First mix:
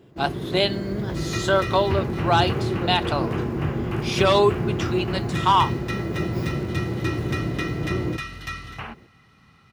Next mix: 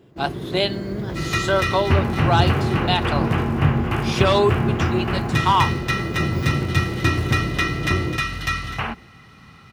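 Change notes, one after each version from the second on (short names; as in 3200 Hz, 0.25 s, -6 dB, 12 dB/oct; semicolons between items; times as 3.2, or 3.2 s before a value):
second sound +9.0 dB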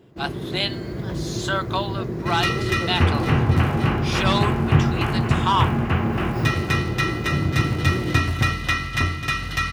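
speech: add HPF 940 Hz; second sound: entry +1.10 s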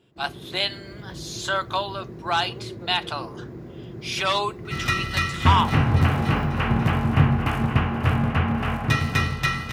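first sound -10.5 dB; second sound: entry +2.45 s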